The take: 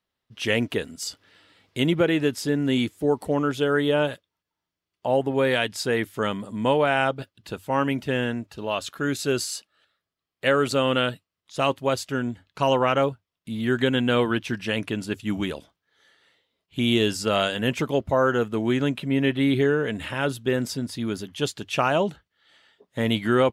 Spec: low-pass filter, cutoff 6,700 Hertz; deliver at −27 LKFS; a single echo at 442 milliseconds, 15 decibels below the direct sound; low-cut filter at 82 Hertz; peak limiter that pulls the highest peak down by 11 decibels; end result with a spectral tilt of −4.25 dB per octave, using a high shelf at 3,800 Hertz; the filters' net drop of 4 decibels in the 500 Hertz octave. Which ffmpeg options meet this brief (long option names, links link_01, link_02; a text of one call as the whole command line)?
ffmpeg -i in.wav -af "highpass=82,lowpass=6700,equalizer=frequency=500:width_type=o:gain=-5,highshelf=frequency=3800:gain=7.5,alimiter=limit=-17dB:level=0:latency=1,aecho=1:1:442:0.178,volume=2dB" out.wav